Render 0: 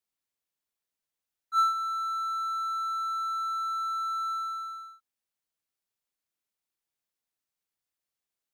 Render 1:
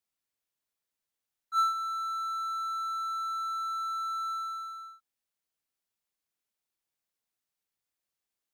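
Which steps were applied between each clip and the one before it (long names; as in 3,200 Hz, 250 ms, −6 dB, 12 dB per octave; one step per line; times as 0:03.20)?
dynamic equaliser 1,800 Hz, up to −3 dB, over −42 dBFS, Q 0.86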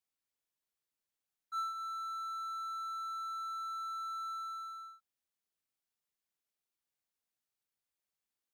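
downward compressor 2 to 1, threshold −36 dBFS, peak gain reduction 7.5 dB
level −4 dB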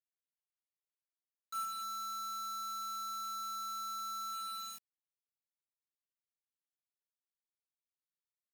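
downsampling to 32,000 Hz
bit reduction 7 bits
level −2 dB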